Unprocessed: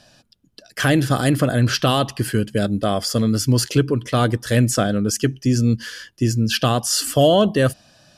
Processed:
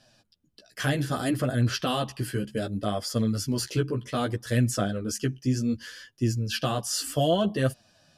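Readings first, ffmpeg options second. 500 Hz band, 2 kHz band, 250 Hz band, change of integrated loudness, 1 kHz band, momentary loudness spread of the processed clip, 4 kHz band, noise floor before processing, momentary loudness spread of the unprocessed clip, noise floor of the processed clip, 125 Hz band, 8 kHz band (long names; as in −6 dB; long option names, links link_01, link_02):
−9.5 dB, −9.0 dB, −8.5 dB, −8.5 dB, −9.0 dB, 6 LU, −9.0 dB, −60 dBFS, 6 LU, −66 dBFS, −8.5 dB, −9.0 dB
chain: -af "flanger=delay=7.3:depth=9.4:regen=1:speed=0.65:shape=triangular,volume=-6dB"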